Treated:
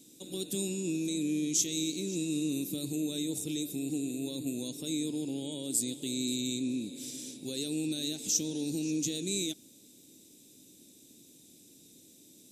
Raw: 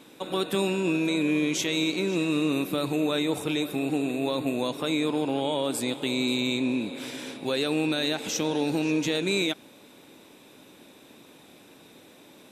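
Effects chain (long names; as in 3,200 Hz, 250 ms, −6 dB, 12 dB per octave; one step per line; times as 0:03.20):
drawn EQ curve 310 Hz 0 dB, 1,200 Hz −27 dB, 7,000 Hz +13 dB, 10,000 Hz +8 dB
level −6 dB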